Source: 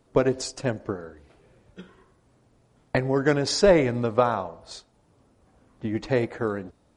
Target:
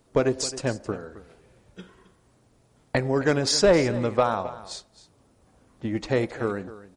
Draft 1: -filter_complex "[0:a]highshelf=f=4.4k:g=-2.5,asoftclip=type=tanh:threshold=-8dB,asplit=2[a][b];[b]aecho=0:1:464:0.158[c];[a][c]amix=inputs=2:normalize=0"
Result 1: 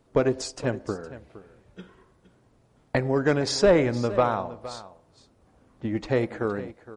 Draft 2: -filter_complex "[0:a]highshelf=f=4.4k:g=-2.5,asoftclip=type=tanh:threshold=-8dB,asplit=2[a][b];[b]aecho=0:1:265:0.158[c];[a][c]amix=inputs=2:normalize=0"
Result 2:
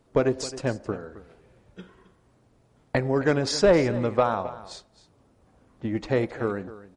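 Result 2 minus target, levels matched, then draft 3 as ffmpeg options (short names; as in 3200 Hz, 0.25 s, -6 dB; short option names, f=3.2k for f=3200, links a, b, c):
8000 Hz band -5.5 dB
-filter_complex "[0:a]highshelf=f=4.4k:g=6.5,asoftclip=type=tanh:threshold=-8dB,asplit=2[a][b];[b]aecho=0:1:265:0.158[c];[a][c]amix=inputs=2:normalize=0"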